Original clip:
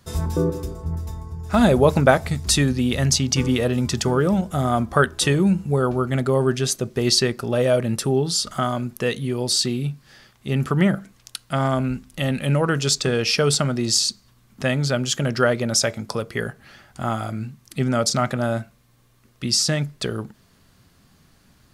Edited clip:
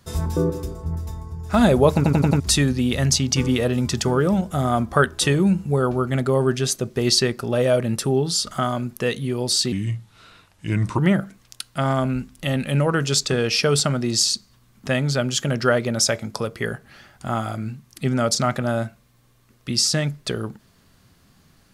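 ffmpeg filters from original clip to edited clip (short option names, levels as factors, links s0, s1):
-filter_complex "[0:a]asplit=8[s0][s1][s2][s3][s4][s5][s6][s7];[s0]atrim=end=2.042[s8];[s1]atrim=start=1.948:end=2.042[s9];[s2]atrim=start=1.948:end=2.042[s10];[s3]atrim=start=1.948:end=2.042[s11];[s4]atrim=start=1.948:end=2.042[s12];[s5]atrim=start=2.398:end=9.724[s13];[s6]atrim=start=9.72:end=10.73,asetpts=PTS-STARTPTS,asetrate=35280,aresample=44100,atrim=end_sample=55676,asetpts=PTS-STARTPTS[s14];[s7]atrim=start=10.726[s15];[s8][s9]acrossfade=d=0.004:c1=hsin:c2=hsin[s16];[s16][s10]acrossfade=d=0.004:c1=hsin:c2=hsin[s17];[s17][s11]acrossfade=d=0.004:c1=hsin:c2=hsin[s18];[s18][s12]acrossfade=d=0.004:c1=hsin:c2=hsin[s19];[s19][s13]acrossfade=d=0.004:c1=hsin:c2=hsin[s20];[s20][s14]acrossfade=d=0.004:c1=hsin:c2=hsin[s21];[s21][s15]acrossfade=d=0.004:c1=hsin:c2=hsin"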